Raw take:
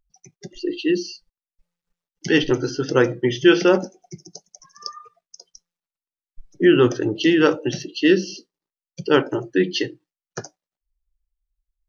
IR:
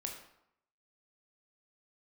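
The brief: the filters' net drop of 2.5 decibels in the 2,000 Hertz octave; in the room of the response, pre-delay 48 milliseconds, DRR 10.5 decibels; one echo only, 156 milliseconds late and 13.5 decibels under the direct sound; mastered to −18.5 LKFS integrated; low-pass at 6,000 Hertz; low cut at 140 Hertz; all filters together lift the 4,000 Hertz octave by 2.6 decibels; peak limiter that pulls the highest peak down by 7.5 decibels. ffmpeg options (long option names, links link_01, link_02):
-filter_complex "[0:a]highpass=140,lowpass=6000,equalizer=frequency=2000:width_type=o:gain=-5.5,equalizer=frequency=4000:width_type=o:gain=7,alimiter=limit=-9dB:level=0:latency=1,aecho=1:1:156:0.211,asplit=2[link_01][link_02];[1:a]atrim=start_sample=2205,adelay=48[link_03];[link_02][link_03]afir=irnorm=-1:irlink=0,volume=-9.5dB[link_04];[link_01][link_04]amix=inputs=2:normalize=0,volume=3dB"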